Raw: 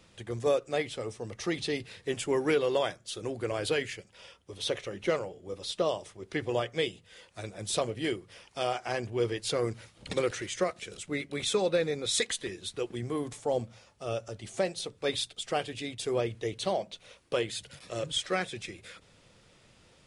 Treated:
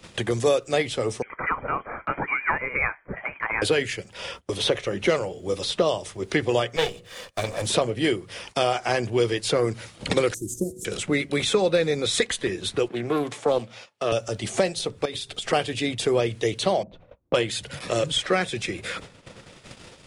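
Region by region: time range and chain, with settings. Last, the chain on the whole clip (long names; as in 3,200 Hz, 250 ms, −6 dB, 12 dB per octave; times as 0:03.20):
0:01.22–0:03.62: elliptic high-pass filter 840 Hz + voice inversion scrambler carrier 3,200 Hz
0:06.76–0:07.66: lower of the sound and its delayed copy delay 1.7 ms + mains-hum notches 60/120/180/240/300/360/420/480/540 Hz
0:10.34–0:10.85: variable-slope delta modulation 64 kbit/s + Chebyshev band-stop filter 320–7,500 Hz, order 3 + hum removal 123.2 Hz, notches 31
0:12.88–0:14.12: high-pass filter 110 Hz 24 dB per octave + bass and treble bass −10 dB, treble −14 dB + highs frequency-modulated by the lows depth 0.19 ms
0:15.05–0:15.53: mains-hum notches 50/100/150/200/250/300/350/400/450 Hz + downward compressor 8 to 1, threshold −40 dBFS
0:16.83–0:17.51: notch filter 420 Hz, Q 5.9 + low-pass that shuts in the quiet parts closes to 450 Hz, open at −27.5 dBFS
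whole clip: noise gate −57 dBFS, range −23 dB; multiband upward and downward compressor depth 70%; level +8.5 dB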